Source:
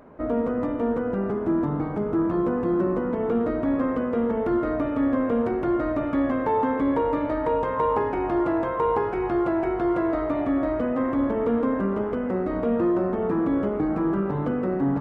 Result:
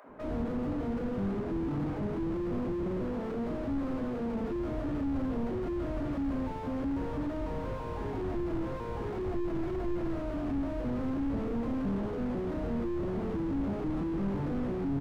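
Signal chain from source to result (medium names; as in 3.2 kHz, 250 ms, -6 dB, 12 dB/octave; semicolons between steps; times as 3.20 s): 3.00–4.30 s: bass shelf 150 Hz -8 dB; three bands offset in time highs, mids, lows 40/90 ms, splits 160/500 Hz; slew-rate limiter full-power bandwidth 8.6 Hz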